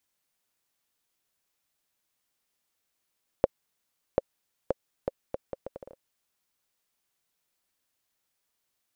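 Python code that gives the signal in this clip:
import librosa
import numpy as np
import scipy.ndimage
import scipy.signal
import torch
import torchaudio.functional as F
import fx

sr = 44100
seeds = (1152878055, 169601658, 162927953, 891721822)

y = fx.bouncing_ball(sr, first_gap_s=0.74, ratio=0.71, hz=538.0, decay_ms=26.0, level_db=-6.5)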